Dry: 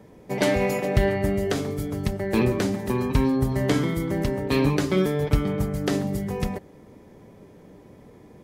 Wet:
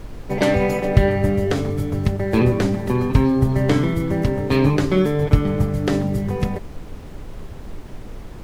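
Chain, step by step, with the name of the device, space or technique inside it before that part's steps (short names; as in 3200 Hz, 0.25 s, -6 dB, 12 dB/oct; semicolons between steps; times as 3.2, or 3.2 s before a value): car interior (bell 100 Hz +6 dB 0.65 oct; high shelf 4900 Hz -8 dB; brown noise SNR 13 dB); gain +4 dB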